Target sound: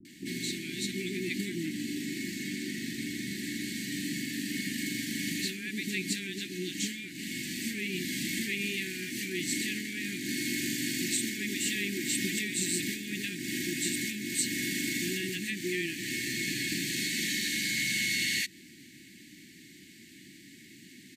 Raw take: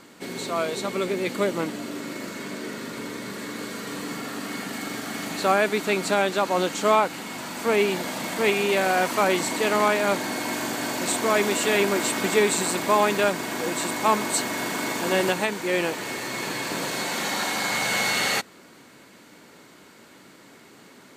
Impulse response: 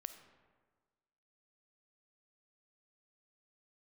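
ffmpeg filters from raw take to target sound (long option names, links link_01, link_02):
-filter_complex "[0:a]acompressor=threshold=-25dB:ratio=6,asuperstop=centerf=800:order=20:qfactor=0.58,acrossover=split=550[link_01][link_02];[link_02]adelay=50[link_03];[link_01][link_03]amix=inputs=2:normalize=0"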